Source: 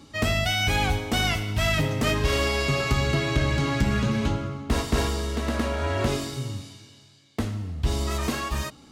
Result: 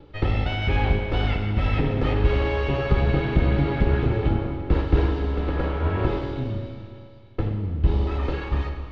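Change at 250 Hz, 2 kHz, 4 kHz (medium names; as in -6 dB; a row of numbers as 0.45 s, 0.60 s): +1.0 dB, -4.5 dB, -8.5 dB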